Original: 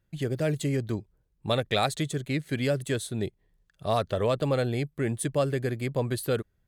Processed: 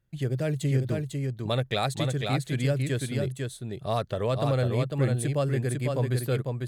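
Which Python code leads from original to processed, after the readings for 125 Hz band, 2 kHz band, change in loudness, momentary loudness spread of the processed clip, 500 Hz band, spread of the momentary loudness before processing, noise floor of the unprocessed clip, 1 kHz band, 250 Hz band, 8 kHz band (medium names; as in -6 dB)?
+4.5 dB, -1.0 dB, +1.0 dB, 5 LU, -1.0 dB, 7 LU, -72 dBFS, -1.0 dB, 0.0 dB, -1.0 dB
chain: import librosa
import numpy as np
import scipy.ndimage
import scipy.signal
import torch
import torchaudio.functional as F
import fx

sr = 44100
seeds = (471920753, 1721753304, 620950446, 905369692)

y = fx.peak_eq(x, sr, hz=130.0, db=8.0, octaves=0.29)
y = y + 10.0 ** (-4.0 / 20.0) * np.pad(y, (int(499 * sr / 1000.0), 0))[:len(y)]
y = y * librosa.db_to_amplitude(-2.5)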